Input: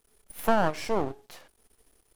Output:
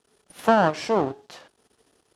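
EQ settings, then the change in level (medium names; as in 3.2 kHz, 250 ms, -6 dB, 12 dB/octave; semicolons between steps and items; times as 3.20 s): high-pass 120 Hz 12 dB/octave; low-pass 6.5 kHz 12 dB/octave; peaking EQ 2.2 kHz -4.5 dB 0.33 oct; +6.0 dB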